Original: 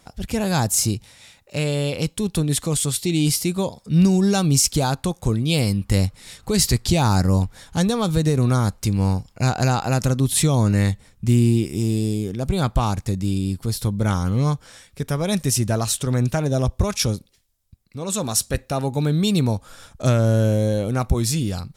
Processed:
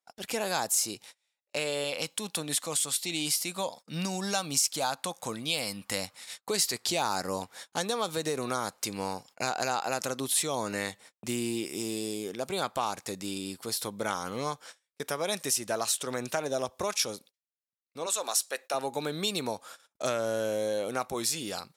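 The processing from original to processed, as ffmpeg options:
-filter_complex "[0:a]asettb=1/sr,asplit=3[s0][s1][s2];[s0]atrim=end=1.844[s3];[s1]atrim=start=1.84:end=6.49,asetpts=PTS-STARTPTS,afade=t=in:d=0.004:c=qsin,afade=t=out:st=4.646:d=0.004:c=qsin,equalizer=f=390:t=o:w=0.41:g=-10[s4];[s2]atrim=start=6.486[s5];[s3][s4]acrossfade=d=0.004:c1=hsin:c2=qsin[s6];[s6][s5]acrossfade=d=0.004:c1=qsin:c2=hsin,asettb=1/sr,asplit=3[s7][s8][s9];[s7]atrim=end=18.064[s10];[s8]atrim=start=18.06:end=18.74,asetpts=PTS-STARTPTS,afade=t=in:d=0.004:c=qsin,afade=t=out:st=0.676:d=0.004:c=qsin,highpass=460[s11];[s9]atrim=start=18.736[s12];[s10][s11]acrossfade=d=0.004:c1=hsin:c2=qsin[s13];[s13][s12]acrossfade=d=0.004:c1=qsin:c2=hsin,agate=range=0.0224:threshold=0.0112:ratio=16:detection=peak,highpass=490,acompressor=threshold=0.0355:ratio=2"

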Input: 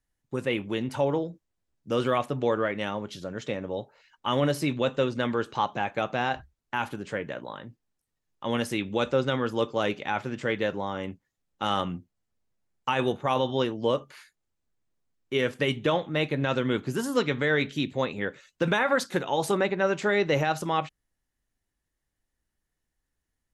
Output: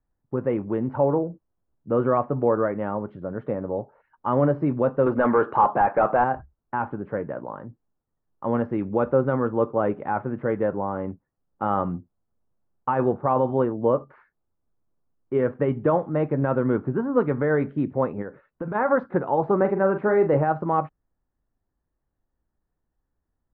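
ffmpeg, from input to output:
-filter_complex "[0:a]asettb=1/sr,asplit=3[s0][s1][s2];[s0]atrim=end=5.064[s3];[s1]atrim=start=5.06:end=6.24,asetpts=PTS-STARTPTS,afade=t=in:d=0.004:c=qsin,afade=t=out:st=1.176:d=0.004:c=qsin,asplit=2[s4][s5];[s5]highpass=f=720:p=1,volume=8.91,asoftclip=type=tanh:threshold=0.224[s6];[s4][s6]amix=inputs=2:normalize=0,lowpass=f=4800:p=1,volume=0.501[s7];[s2]atrim=start=6.236[s8];[s3][s7]acrossfade=d=0.004:c1=hsin:c2=qsin[s9];[s9][s8]acrossfade=d=0.004:c1=qsin:c2=hsin,asplit=3[s10][s11][s12];[s10]afade=t=out:st=18.21:d=0.02[s13];[s11]acompressor=threshold=0.02:ratio=3:attack=3.2:release=140:knee=1:detection=peak,afade=t=in:st=18.21:d=0.02,afade=t=out:st=18.74:d=0.02[s14];[s12]afade=t=in:st=18.74:d=0.02[s15];[s13][s14][s15]amix=inputs=3:normalize=0,asettb=1/sr,asplit=3[s16][s17][s18];[s16]atrim=end=19.574[s19];[s17]atrim=start=19.57:end=20.37,asetpts=PTS-STARTPTS,afade=t=in:d=0.004:c=qsin,afade=t=out:st=0.796:d=0.004:c=qsin,asplit=2[s20][s21];[s21]adelay=42,volume=0.398[s22];[s20][s22]amix=inputs=2:normalize=0,atrim=end_sample=35280[s23];[s18]atrim=start=20.366[s24];[s19][s23]acrossfade=d=0.004:c1=hsin:c2=qsin[s25];[s25][s24]acrossfade=d=0.004:c1=qsin:c2=hsin,lowpass=f=1300:w=0.5412,lowpass=f=1300:w=1.3066,volume=1.68"

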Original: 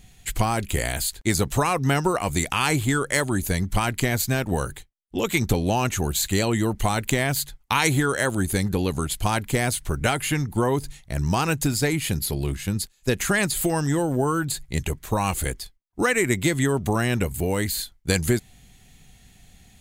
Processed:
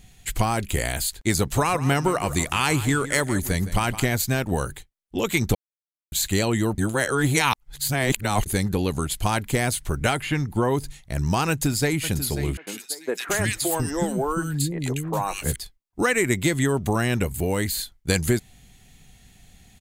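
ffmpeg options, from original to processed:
-filter_complex "[0:a]asplit=3[s0][s1][s2];[s0]afade=t=out:st=1.51:d=0.02[s3];[s1]aecho=1:1:164|328|492:0.2|0.0499|0.0125,afade=t=in:st=1.51:d=0.02,afade=t=out:st=4.08:d=0.02[s4];[s2]afade=t=in:st=4.08:d=0.02[s5];[s3][s4][s5]amix=inputs=3:normalize=0,asettb=1/sr,asplit=3[s6][s7][s8];[s6]atrim=end=10.174[s9];[s7]atrim=start=10.17:end=10.71,asetpts=PTS-STARTPTS,afade=t=in:d=0.004:c=qsin,afade=t=out:st=0.536:d=0.004:c=qsin,acrossover=split=4300[s10][s11];[s11]acompressor=threshold=0.00631:ratio=4:attack=1:release=60[s12];[s10][s12]amix=inputs=2:normalize=0[s13];[s8]atrim=start=10.706[s14];[s9][s13]acrossfade=d=0.004:c1=hsin:c2=qsin[s15];[s15][s14]acrossfade=d=0.004:c1=qsin:c2=hsin,asplit=2[s16][s17];[s17]afade=t=in:st=11.49:d=0.01,afade=t=out:st=12.06:d=0.01,aecho=0:1:540|1080|1620|2160|2700:0.281838|0.140919|0.0704596|0.0352298|0.0176149[s18];[s16][s18]amix=inputs=2:normalize=0,asettb=1/sr,asplit=3[s19][s20][s21];[s19]atrim=end=12.574[s22];[s20]atrim=start=12.57:end=15.56,asetpts=PTS-STARTPTS,afade=t=in:d=0.004:c=qsin,afade=t=out:st=2.986:d=0.004:c=qsin,acrossover=split=290|1800[s23][s24][s25];[s25]adelay=100[s26];[s23]adelay=720[s27];[s27][s24][s26]amix=inputs=3:normalize=0,atrim=end_sample=131859[s28];[s21]atrim=start=15.556[s29];[s22][s28]acrossfade=d=0.004:c1=hsin:c2=qsin[s30];[s30][s29]acrossfade=d=0.004:c1=qsin:c2=hsin,asplit=5[s31][s32][s33][s34][s35];[s31]atrim=end=5.55,asetpts=PTS-STARTPTS,afade=t=out:st=5.546:d=0.004:c=hsin[s36];[s32]atrim=start=5.55:end=6.12,asetpts=PTS-STARTPTS,volume=0[s37];[s33]atrim=start=6.12:end=6.782,asetpts=PTS-STARTPTS,afade=t=in:d=0.004:c=hsin[s38];[s34]atrim=start=6.778:end=8.462,asetpts=PTS-STARTPTS,areverse[s39];[s35]atrim=start=8.458[s40];[s36][s37][s38]concat=n=3:v=0:a=1[s41];[s41][s39]acrossfade=d=0.004:c1=hsin:c2=hsin[s42];[s42][s40]acrossfade=d=0.004:c1=hsin:c2=hsin"

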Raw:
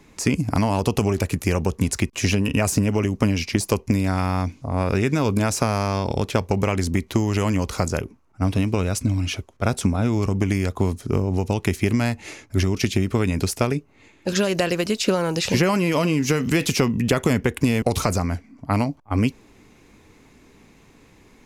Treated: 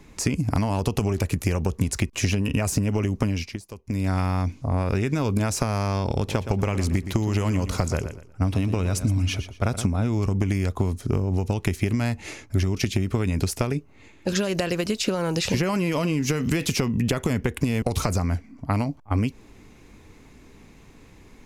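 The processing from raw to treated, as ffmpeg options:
-filter_complex "[0:a]asettb=1/sr,asplit=3[s0][s1][s2];[s0]atrim=end=6.154[s3];[s1]atrim=start=6.15:end=9.87,asetpts=PTS-STARTPTS,afade=t=in:d=0.004:c=qsin,afade=t=out:st=3.716:d=0.004:c=qsin,aecho=1:1:118|236|354:0.224|0.0582|0.0151,atrim=end_sample=164052[s4];[s2]atrim=start=9.866[s5];[s3][s4]acrossfade=d=0.004:c1=hsin:c2=qsin[s6];[s6][s5]acrossfade=d=0.004:c1=qsin:c2=hsin,asplit=3[s7][s8][s9];[s7]atrim=end=3.6,asetpts=PTS-STARTPTS,afade=t=out:st=3.23:d=0.37:silence=0.1[s10];[s8]atrim=start=3.6:end=3.83,asetpts=PTS-STARTPTS,volume=0.1[s11];[s9]atrim=start=3.83,asetpts=PTS-STARTPTS,afade=t=in:d=0.37:silence=0.1[s12];[s10][s11][s12]concat=n=3:v=0:a=1,acompressor=threshold=0.0891:ratio=6,lowshelf=f=99:g=8"

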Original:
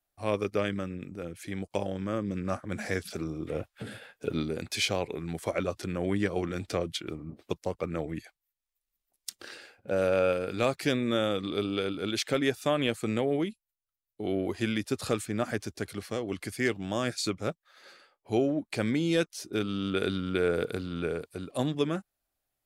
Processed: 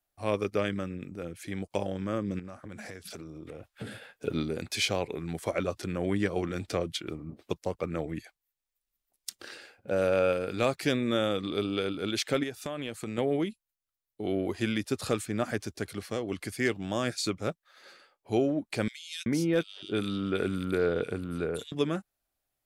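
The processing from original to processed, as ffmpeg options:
-filter_complex "[0:a]asettb=1/sr,asplit=3[s0][s1][s2];[s0]atrim=end=2.394[s3];[s1]atrim=start=2.39:end=3.69,asetpts=PTS-STARTPTS,afade=t=in:d=0.004:c=qsin,afade=t=out:st=1.296:d=0.004:c=qsin,acompressor=threshold=0.0126:ratio=16:attack=3.2:release=140:knee=1:detection=peak[s4];[s2]atrim=start=3.686[s5];[s3][s4]acrossfade=d=0.004:c1=hsin:c2=qsin[s6];[s6][s5]acrossfade=d=0.004:c1=qsin:c2=hsin,asettb=1/sr,asplit=3[s7][s8][s9];[s7]atrim=end=12.434[s10];[s8]atrim=start=12.43:end=13.18,asetpts=PTS-STARTPTS,afade=t=in:d=0.004:c=qsin,afade=t=out:st=0.746:d=0.004:c=qsin,acompressor=threshold=0.0251:ratio=4:attack=3.2:release=140:knee=1:detection=peak[s11];[s9]atrim=start=13.176[s12];[s10][s11]acrossfade=d=0.004:c1=hsin:c2=qsin[s13];[s13][s12]acrossfade=d=0.004:c1=qsin:c2=hsin,asettb=1/sr,asplit=3[s14][s15][s16];[s14]atrim=end=18.884[s17];[s15]atrim=start=18.88:end=21.72,asetpts=PTS-STARTPTS,afade=t=in:d=0.004:c=qsin,afade=t=out:st=2.836:d=0.004:c=qsin,acrossover=split=2500[s18][s19];[s18]adelay=380[s20];[s20][s19]amix=inputs=2:normalize=0,atrim=end_sample=125244[s21];[s16]atrim=start=21.716[s22];[s17][s21]acrossfade=d=0.004:c1=hsin:c2=qsin[s23];[s23][s22]acrossfade=d=0.004:c1=qsin:c2=hsin"

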